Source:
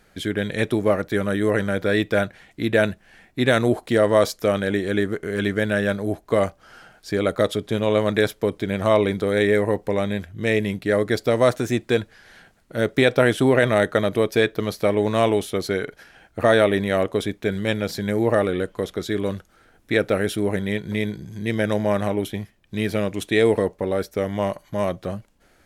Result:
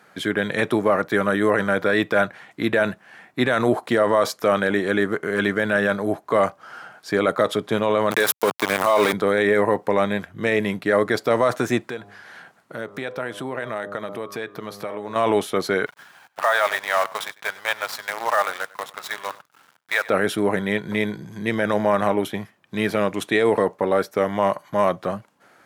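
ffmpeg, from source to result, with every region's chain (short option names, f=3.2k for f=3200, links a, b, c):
-filter_complex "[0:a]asettb=1/sr,asplit=3[a][b][c];[a]atrim=end=8.114[d];[b]atrim=start=8.11:end=9.13,asetpts=PTS-STARTPTS,afade=t=in:d=0.004:c=qsin,afade=t=out:st=1.016:d=0.004:c=qsin,aemphasis=mode=production:type=bsi,acontrast=47,aeval=exprs='val(0)*gte(abs(val(0)),0.0891)':c=same[e];[c]atrim=start=9.126[f];[d][e]acrossfade=d=0.004:c1=hsin:c2=qsin[g];[g][f]acrossfade=d=0.004:c1=qsin:c2=hsin,asettb=1/sr,asplit=3[h][i][j];[h]atrim=end=11.834[k];[i]atrim=start=11.83:end=15.16,asetpts=PTS-STARTPTS,afade=t=in:d=0.004:c=qsin,afade=t=out:st=3.326:d=0.004:c=qsin,bandreject=f=101.1:t=h:w=4,bandreject=f=202.2:t=h:w=4,bandreject=f=303.3:t=h:w=4,bandreject=f=404.4:t=h:w=4,bandreject=f=505.5:t=h:w=4,bandreject=f=606.6:t=h:w=4,bandreject=f=707.7:t=h:w=4,bandreject=f=808.8:t=h:w=4,bandreject=f=909.9:t=h:w=4,bandreject=f=1.011k:t=h:w=4,bandreject=f=1.1121k:t=h:w=4,bandreject=f=1.2132k:t=h:w=4,bandreject=f=1.3143k:t=h:w=4,acompressor=threshold=-34dB:ratio=3:attack=3.2:release=140:knee=1:detection=peak[l];[j]atrim=start=15.156[m];[k][l]acrossfade=d=0.004:c1=hsin:c2=qsin[n];[n][m]acrossfade=d=0.004:c1=qsin:c2=hsin,asettb=1/sr,asplit=3[o][p][q];[o]atrim=end=15.864[r];[p]atrim=start=15.86:end=20.09,asetpts=PTS-STARTPTS,afade=t=in:d=0.004:c=qsin,afade=t=out:st=4.226:d=0.004:c=qsin,highpass=f=710:w=0.5412,highpass=f=710:w=1.3066,acrusher=bits=6:dc=4:mix=0:aa=0.000001,aecho=1:1:98:0.0891,atrim=end_sample=186543[s];[q]atrim=start=20.086[t];[r][s]acrossfade=d=0.004:c1=hsin:c2=qsin[u];[u][t]acrossfade=d=0.004:c1=qsin:c2=hsin,highpass=f=120:w=0.5412,highpass=f=120:w=1.3066,equalizer=f=1.1k:t=o:w=1.5:g=10.5,alimiter=limit=-8.5dB:level=0:latency=1:release=23"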